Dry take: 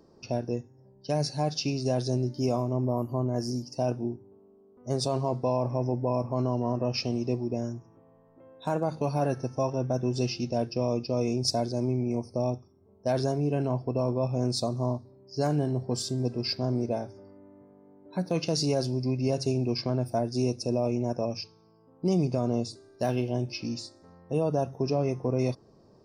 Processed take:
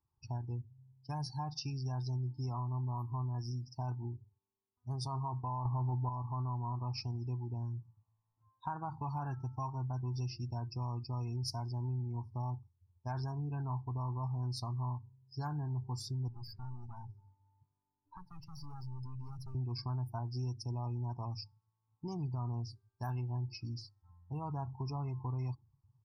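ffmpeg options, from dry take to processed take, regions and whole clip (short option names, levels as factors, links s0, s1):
-filter_complex "[0:a]asettb=1/sr,asplit=3[s0][s1][s2];[s0]atrim=end=5.654[s3];[s1]atrim=start=5.65:end=6.09,asetpts=PTS-STARTPTS,afade=t=in:d=0.004:c=qsin,afade=t=out:st=0.436:d=0.004:c=qsin,aemphasis=mode=reproduction:type=75fm,acontrast=70[s4];[s2]atrim=start=6.086[s5];[s3][s4]acrossfade=d=0.004:c1=hsin:c2=qsin[s6];[s6][s5]acrossfade=d=0.004:c1=qsin:c2=hsin,asettb=1/sr,asplit=3[s7][s8][s9];[s7]atrim=end=16.284[s10];[s8]atrim=start=16.28:end=19.55,asetpts=PTS-STARTPTS,afade=t=in:d=0.004:c=qsin,afade=t=out:st=3.266:d=0.004:c=qsin,acrossover=split=220|2000|4500[s11][s12][s13][s14];[s11]acompressor=threshold=0.0158:ratio=3[s15];[s12]acompressor=threshold=0.0141:ratio=3[s16];[s13]acompressor=threshold=0.00447:ratio=3[s17];[s14]acompressor=threshold=0.00708:ratio=3[s18];[s15][s16][s17][s18]amix=inputs=4:normalize=0,aeval=exprs='(tanh(79.4*val(0)+0.35)-tanh(0.35))/79.4':c=same[s19];[s9]atrim=start=19.546[s20];[s10][s19]acrossfade=d=0.004:c1=hsin:c2=qsin[s21];[s21][s20]acrossfade=d=0.004:c1=qsin:c2=hsin,firequalizer=gain_entry='entry(120,0);entry(180,-16);entry(370,-17);entry(540,-30);entry(860,1);entry(1300,-4);entry(2700,-13);entry(5000,-9);entry(7800,-14);entry(11000,1)':delay=0.05:min_phase=1,afftdn=nr=24:nf=-49,acompressor=threshold=0.0112:ratio=2.5,volume=1.26"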